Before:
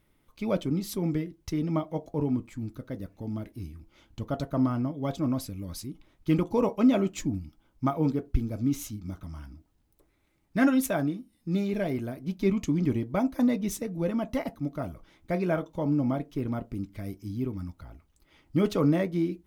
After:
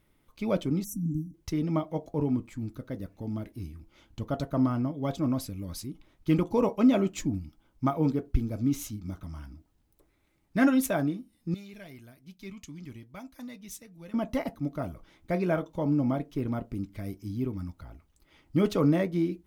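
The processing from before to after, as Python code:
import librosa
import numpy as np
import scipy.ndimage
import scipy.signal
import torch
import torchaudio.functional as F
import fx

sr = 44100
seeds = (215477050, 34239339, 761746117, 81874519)

y = fx.spec_erase(x, sr, start_s=0.84, length_s=0.5, low_hz=320.0, high_hz=5500.0)
y = fx.tone_stack(y, sr, knobs='5-5-5', at=(11.54, 14.14))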